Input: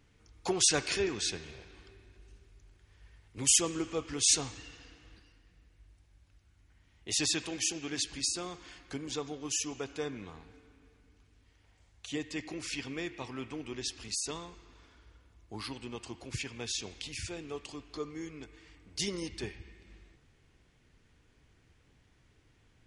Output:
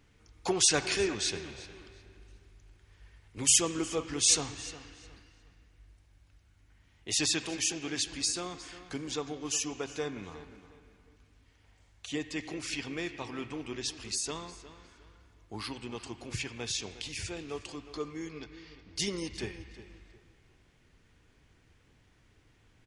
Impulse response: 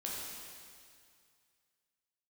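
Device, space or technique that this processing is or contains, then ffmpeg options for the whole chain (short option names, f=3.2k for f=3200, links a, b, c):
filtered reverb send: -filter_complex "[0:a]bandreject=f=65.89:t=h:w=4,bandreject=f=131.78:t=h:w=4,asplit=2[a][b];[b]highpass=550,lowpass=3.3k[c];[1:a]atrim=start_sample=2205[d];[c][d]afir=irnorm=-1:irlink=0,volume=-16.5dB[e];[a][e]amix=inputs=2:normalize=0,asettb=1/sr,asplit=3[f][g][h];[f]atrim=end=18.314[i];[g]atrim=start=18.31:end=18.96,asetpts=PTS-STARTPTS,afade=t=in:d=0.004:c=qsin,afade=t=out:st=0.646:d=0.004:c=qsin,highshelf=f=6.9k:t=q:w=3:g=-13.5[j];[h]atrim=start=18.956[k];[i][j]acrossfade=d=0.004:c1=hsin:c2=qsin[l];[l][k]acrossfade=d=0.004:c1=qsin:c2=hsin,asplit=2[m][n];[n]adelay=359,lowpass=f=4k:p=1,volume=-14.5dB,asplit=2[o][p];[p]adelay=359,lowpass=f=4k:p=1,volume=0.3,asplit=2[q][r];[r]adelay=359,lowpass=f=4k:p=1,volume=0.3[s];[m][o][q][s]amix=inputs=4:normalize=0,volume=1.5dB"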